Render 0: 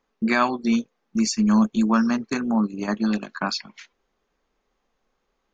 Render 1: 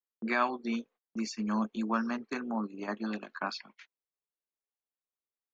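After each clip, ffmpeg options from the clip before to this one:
-filter_complex "[0:a]agate=range=0.0631:threshold=0.00708:ratio=16:detection=peak,acrossover=split=250 4100:gain=0.2 1 0.251[s0][s1][s2];[s0][s1][s2]amix=inputs=3:normalize=0,volume=0.422"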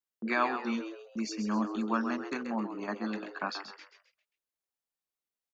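-filter_complex "[0:a]asplit=5[s0][s1][s2][s3][s4];[s1]adelay=132,afreqshift=100,volume=0.355[s5];[s2]adelay=264,afreqshift=200,volume=0.132[s6];[s3]adelay=396,afreqshift=300,volume=0.0484[s7];[s4]adelay=528,afreqshift=400,volume=0.018[s8];[s0][s5][s6][s7][s8]amix=inputs=5:normalize=0"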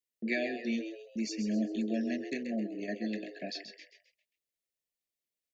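-af "asuperstop=centerf=1100:order=20:qfactor=1.1"

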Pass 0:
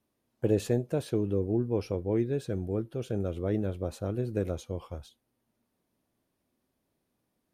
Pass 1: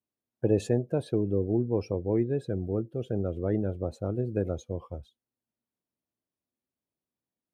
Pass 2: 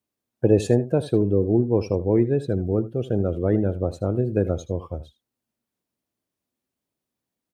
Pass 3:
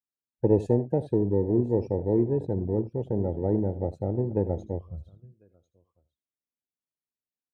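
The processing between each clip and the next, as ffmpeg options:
-af "highpass=50,afftdn=nr=17:nf=-45,volume=1.19"
-af "aecho=1:1:78:0.158,volume=2.24"
-af "aecho=1:1:1048:0.126,aeval=exprs='0.596*(cos(1*acos(clip(val(0)/0.596,-1,1)))-cos(1*PI/2))+0.0119*(cos(6*acos(clip(val(0)/0.596,-1,1)))-cos(6*PI/2))':c=same,afwtdn=0.0631,volume=0.631"

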